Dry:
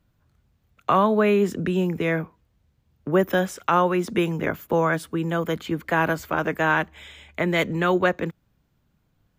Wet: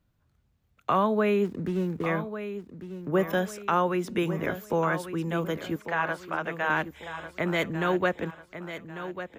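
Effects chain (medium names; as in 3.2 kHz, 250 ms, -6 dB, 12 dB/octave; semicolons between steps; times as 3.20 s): 1.45–2.06 s: median filter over 41 samples; 5.76–6.70 s: three-band isolator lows -13 dB, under 500 Hz, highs -16 dB, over 5.2 kHz; feedback delay 1146 ms, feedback 40%, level -11 dB; trim -5 dB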